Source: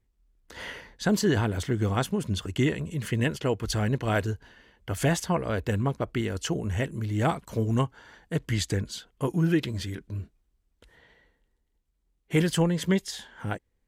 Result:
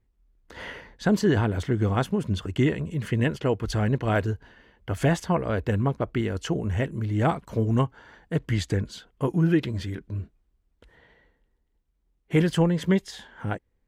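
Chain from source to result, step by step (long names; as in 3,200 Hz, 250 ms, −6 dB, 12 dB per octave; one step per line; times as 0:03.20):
high-shelf EQ 3,800 Hz −11 dB
level +2.5 dB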